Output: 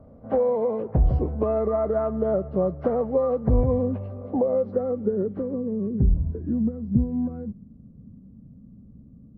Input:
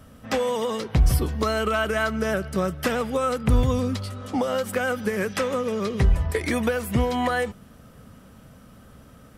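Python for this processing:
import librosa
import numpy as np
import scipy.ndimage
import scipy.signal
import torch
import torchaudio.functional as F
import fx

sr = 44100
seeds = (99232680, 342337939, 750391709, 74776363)

y = fx.freq_compress(x, sr, knee_hz=1000.0, ratio=1.5)
y = fx.filter_sweep_lowpass(y, sr, from_hz=630.0, to_hz=220.0, start_s=4.06, end_s=6.41, q=1.9)
y = y * librosa.db_to_amplitude(-1.5)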